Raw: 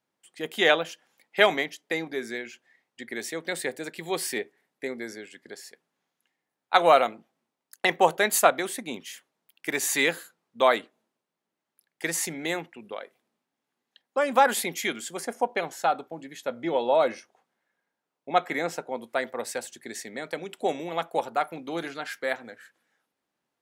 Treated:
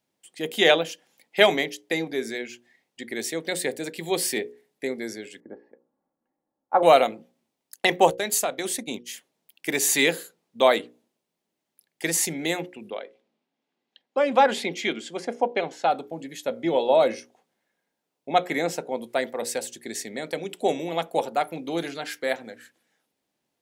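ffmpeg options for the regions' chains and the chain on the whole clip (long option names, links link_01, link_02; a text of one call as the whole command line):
ffmpeg -i in.wav -filter_complex "[0:a]asettb=1/sr,asplit=3[link_01][link_02][link_03];[link_01]atrim=end=5.404[link_04];[link_02]atrim=start=5.4:end=6.83,asetpts=PTS-STARTPTS,afade=type=in:duration=0.004:curve=qsin,afade=type=out:start_time=1.426:duration=0.004:curve=qsin,lowpass=frequency=1200:width=0.5412,lowpass=frequency=1200:width=1.3066,aecho=1:1:3.6:0.47,atrim=end_sample=63063[link_05];[link_03]atrim=start=6.826[link_06];[link_04][link_05]acrossfade=duration=0.004:curve1=hsin:curve2=qsin[link_07];[link_07][link_06]acrossfade=duration=0.004:curve1=qsin:curve2=hsin,asettb=1/sr,asplit=3[link_08][link_09][link_10];[link_08]atrim=end=8.104[link_11];[link_09]atrim=start=8.1:end=9.09,asetpts=PTS-STARTPTS,afade=type=in:duration=0.004:curve=qsin,afade=type=out:start_time=0.986:duration=0.004:curve=qsin,equalizer=frequency=6000:width_type=o:width=1.1:gain=4.5,acompressor=threshold=-28dB:ratio=2.5:attack=3.2:release=140:knee=1:detection=peak,agate=range=-33dB:threshold=-34dB:ratio=3:release=100:detection=peak[link_12];[link_10]atrim=start=9.086[link_13];[link_11][link_12]acrossfade=duration=0.004:curve1=hsin:curve2=qsin[link_14];[link_14][link_13]acrossfade=duration=0.004:curve1=qsin:curve2=hsin,asettb=1/sr,asplit=3[link_15][link_16][link_17];[link_15]atrim=end=12.904[link_18];[link_16]atrim=start=12.9:end=15.91,asetpts=PTS-STARTPTS,afade=type=in:duration=0.004:curve=qsin,afade=type=out:start_time=3.006:duration=0.004:curve=qsin,highpass=160,lowpass=4000,bandreject=frequency=1800:width=25[link_19];[link_17]atrim=start=15.906[link_20];[link_18][link_19]acrossfade=duration=0.004:curve1=hsin:curve2=qsin[link_21];[link_21][link_20]acrossfade=duration=0.004:curve1=qsin:curve2=hsin,equalizer=frequency=1300:width=1.1:gain=-8.5,bandreject=frequency=60:width_type=h:width=6,bandreject=frequency=120:width_type=h:width=6,bandreject=frequency=180:width_type=h:width=6,bandreject=frequency=240:width_type=h:width=6,bandreject=frequency=300:width_type=h:width=6,bandreject=frequency=360:width_type=h:width=6,bandreject=frequency=420:width_type=h:width=6,bandreject=frequency=480:width_type=h:width=6,bandreject=frequency=540:width_type=h:width=6,volume=5.5dB" out.wav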